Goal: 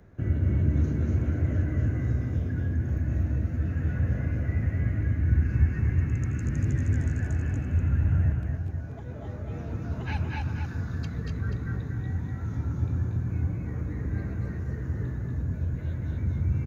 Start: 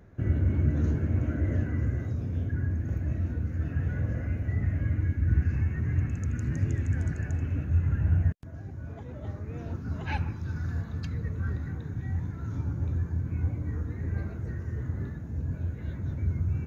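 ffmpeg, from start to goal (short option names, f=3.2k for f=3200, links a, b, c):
-filter_complex "[0:a]asplit=2[a][b];[b]aecho=0:1:250:0.562[c];[a][c]amix=inputs=2:normalize=0,acrossover=split=220|3000[d][e][f];[e]acompressor=threshold=-35dB:ratio=6[g];[d][g][f]amix=inputs=3:normalize=0,asplit=2[h][i];[i]aecho=0:1:234:0.596[j];[h][j]amix=inputs=2:normalize=0"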